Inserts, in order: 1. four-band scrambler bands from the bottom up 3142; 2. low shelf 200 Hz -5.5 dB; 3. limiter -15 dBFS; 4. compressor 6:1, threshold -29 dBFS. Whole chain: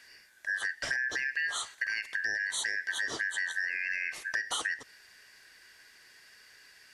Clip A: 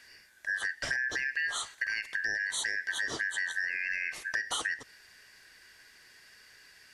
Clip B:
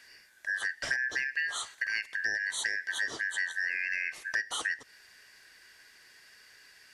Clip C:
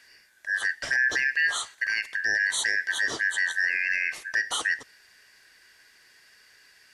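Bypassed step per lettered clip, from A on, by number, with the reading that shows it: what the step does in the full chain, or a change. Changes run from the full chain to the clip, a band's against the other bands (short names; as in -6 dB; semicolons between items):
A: 2, 250 Hz band +1.5 dB; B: 3, mean gain reduction 1.5 dB; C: 4, mean gain reduction 3.5 dB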